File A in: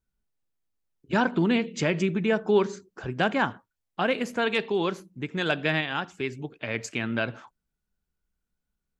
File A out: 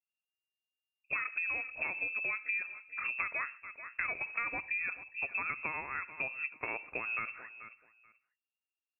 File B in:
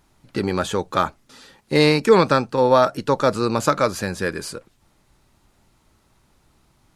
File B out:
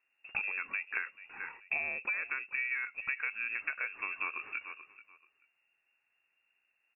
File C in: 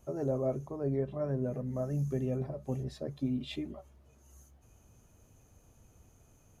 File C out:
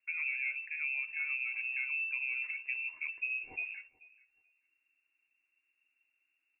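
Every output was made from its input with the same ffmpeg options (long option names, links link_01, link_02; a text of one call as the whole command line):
ffmpeg -i in.wav -af "agate=range=-18dB:threshold=-52dB:ratio=16:detection=peak,aecho=1:1:434|868:0.075|0.0135,acompressor=threshold=-32dB:ratio=16,lowpass=frequency=2400:width_type=q:width=0.5098,lowpass=frequency=2400:width_type=q:width=0.6013,lowpass=frequency=2400:width_type=q:width=0.9,lowpass=frequency=2400:width_type=q:width=2.563,afreqshift=-2800" out.wav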